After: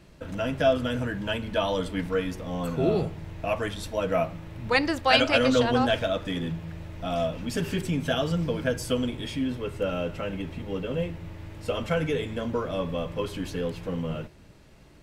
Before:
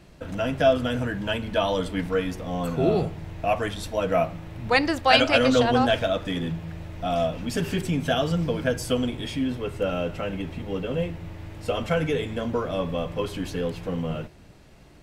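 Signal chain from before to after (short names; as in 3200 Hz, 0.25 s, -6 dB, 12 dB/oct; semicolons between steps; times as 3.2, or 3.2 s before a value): notch 730 Hz, Q 12; gain -2 dB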